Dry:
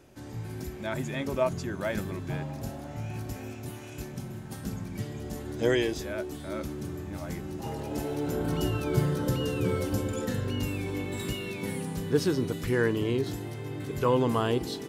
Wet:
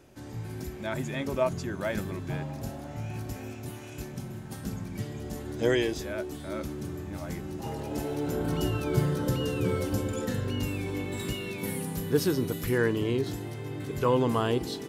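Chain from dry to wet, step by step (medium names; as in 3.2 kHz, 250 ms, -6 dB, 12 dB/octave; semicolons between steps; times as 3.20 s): 11.58–12.78 s: peaking EQ 13 kHz +11.5 dB 0.58 oct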